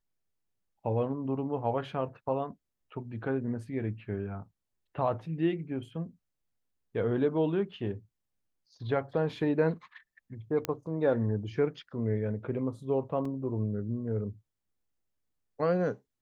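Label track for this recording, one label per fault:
10.650000	10.650000	pop -15 dBFS
13.250000	13.250000	dropout 3.7 ms

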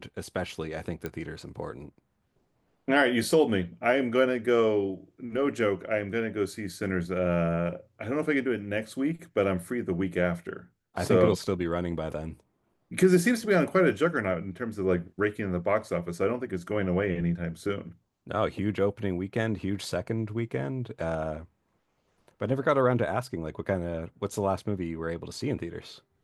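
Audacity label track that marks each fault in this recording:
1.060000	1.060000	pop -19 dBFS
11.470000	11.470000	dropout 3.4 ms

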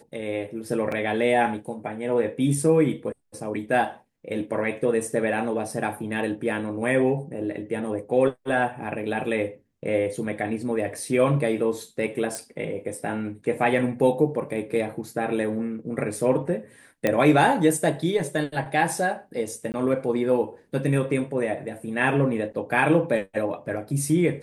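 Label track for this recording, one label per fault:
0.920000	0.920000	dropout 3 ms
12.350000	12.350000	pop
14.500000	14.500000	dropout 2.7 ms
17.070000	17.070000	pop -9 dBFS
19.720000	19.740000	dropout 19 ms

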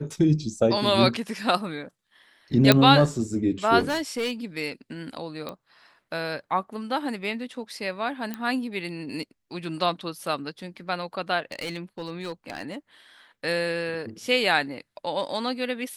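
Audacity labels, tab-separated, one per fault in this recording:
2.720000	2.720000	pop -1 dBFS
3.790000	4.320000	clipped -23 dBFS
5.490000	5.490000	pop -20 dBFS
8.340000	8.340000	pop -17 dBFS
11.520000	12.750000	clipped -27.5 dBFS

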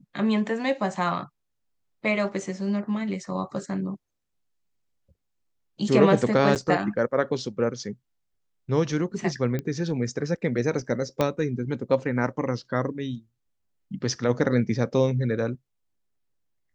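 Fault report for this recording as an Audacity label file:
6.550000	6.560000	dropout 8.3 ms
9.590000	9.590000	pop -17 dBFS
11.210000	11.210000	pop -10 dBFS

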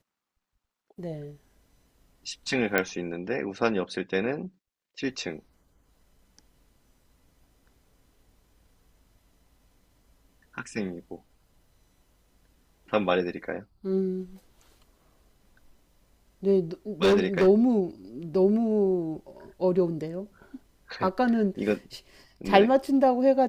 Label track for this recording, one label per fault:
2.780000	2.780000	pop -8 dBFS
17.020000	17.480000	clipped -16.5 dBFS

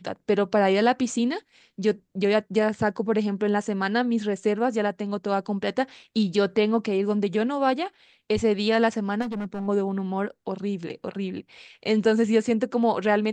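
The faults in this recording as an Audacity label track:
9.210000	9.680000	clipped -27 dBFS

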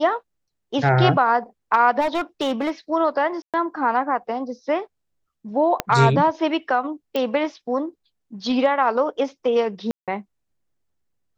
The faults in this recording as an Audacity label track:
2.000000	2.700000	clipped -18 dBFS
3.420000	3.540000	dropout 117 ms
5.800000	5.800000	pop -6 dBFS
7.160000	7.160000	pop -12 dBFS
9.910000	10.080000	dropout 167 ms

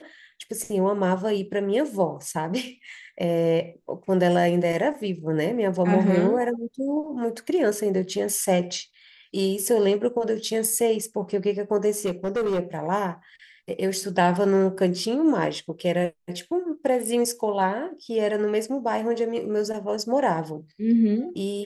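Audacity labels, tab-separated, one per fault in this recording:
12.050000	12.600000	clipped -21 dBFS

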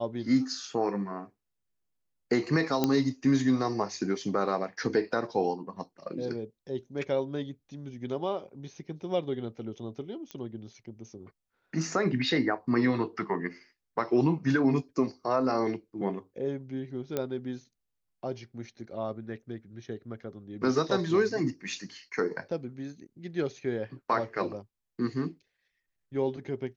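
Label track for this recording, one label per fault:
2.840000	2.840000	pop -11 dBFS
10.310000	10.310000	pop -24 dBFS
17.170000	17.170000	pop -16 dBFS

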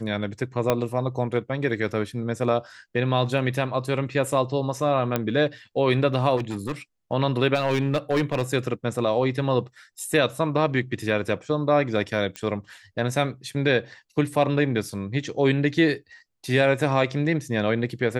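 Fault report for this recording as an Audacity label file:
0.700000	0.700000	pop -7 dBFS
5.160000	5.160000	pop -9 dBFS
6.360000	6.720000	clipped -23.5 dBFS
7.540000	8.420000	clipped -17 dBFS
12.360000	12.360000	pop -16 dBFS

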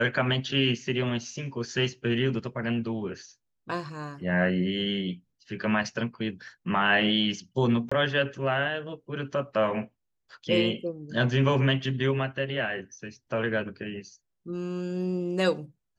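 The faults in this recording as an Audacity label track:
7.890000	7.920000	dropout 25 ms

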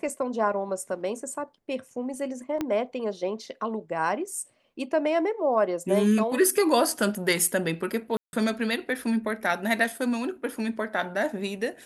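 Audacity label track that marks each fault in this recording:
2.610000	2.610000	pop -15 dBFS
8.170000	8.330000	dropout 161 ms

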